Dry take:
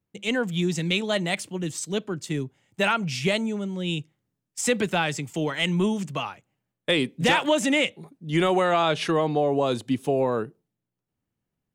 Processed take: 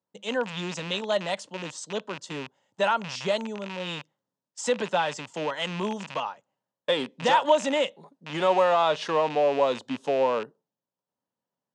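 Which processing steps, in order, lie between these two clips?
rattle on loud lows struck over -34 dBFS, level -20 dBFS; cabinet simulation 250–7200 Hz, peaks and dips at 340 Hz -7 dB, 560 Hz +7 dB, 950 Hz +9 dB, 2.3 kHz -10 dB; trim -3 dB

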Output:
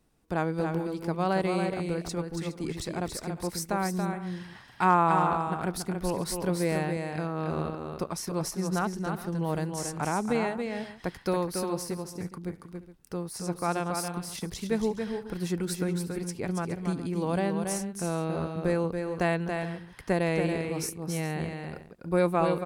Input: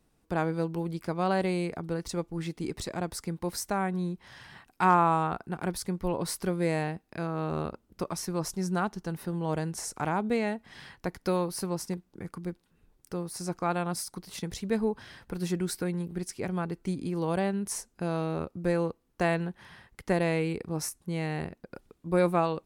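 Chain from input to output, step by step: multi-tap echo 280/347/417 ms -5.5/-19.5/-16.5 dB

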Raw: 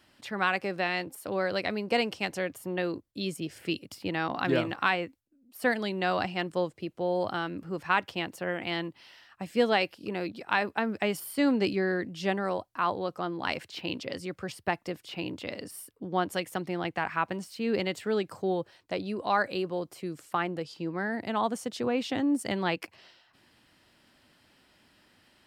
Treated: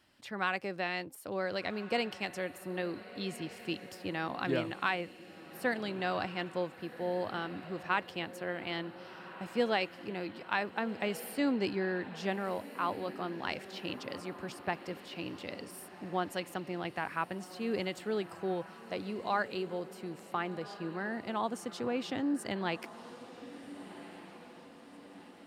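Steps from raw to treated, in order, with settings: echo that smears into a reverb 1462 ms, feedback 54%, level -14 dB; trim -5.5 dB

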